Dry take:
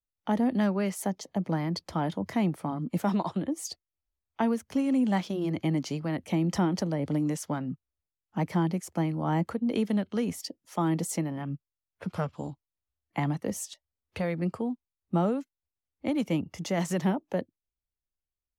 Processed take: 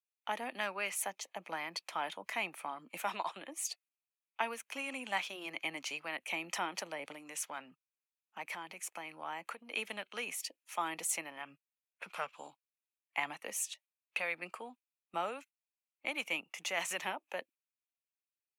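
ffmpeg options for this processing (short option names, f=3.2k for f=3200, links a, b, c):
-filter_complex "[0:a]asettb=1/sr,asplit=3[a][b][c];[a]atrim=end=7.124[d];[b]atrim=start=7.12:end=9.77,asetpts=PTS-STARTPTS,afade=t=in:d=0.004:c=qsin,afade=t=out:st=2.646:d=0.004:c=qsin,acompressor=threshold=-30dB:ratio=4:attack=3.2:release=140:knee=1:detection=peak[e];[c]atrim=start=9.766[f];[d][e]acrossfade=d=0.004:c1=hsin:c2=qsin[g];[g][f]acrossfade=d=0.004:c1=qsin:c2=hsin,highpass=1k,agate=range=-8dB:threshold=-58dB:ratio=16:detection=peak,equalizer=f=2.5k:t=o:w=0.33:g=12,equalizer=f=5k:t=o:w=0.33:g=-7,equalizer=f=10k:t=o:w=0.33:g=3"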